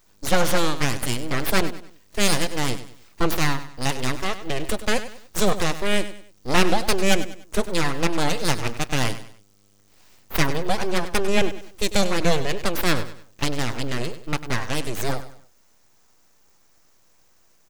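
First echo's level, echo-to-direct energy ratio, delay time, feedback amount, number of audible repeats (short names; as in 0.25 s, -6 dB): -13.0 dB, -12.5 dB, 98 ms, 35%, 3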